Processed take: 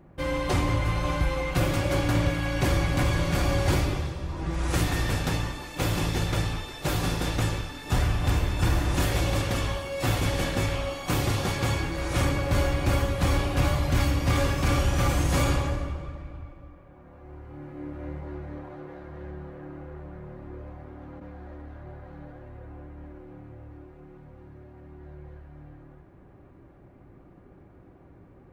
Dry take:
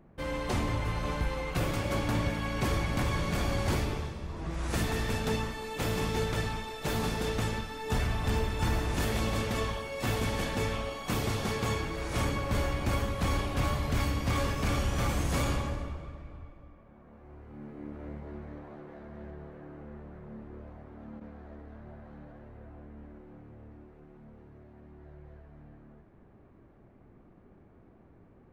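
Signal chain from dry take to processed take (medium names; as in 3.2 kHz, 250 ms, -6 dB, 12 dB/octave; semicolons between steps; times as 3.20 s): comb of notches 220 Hz; trim +6.5 dB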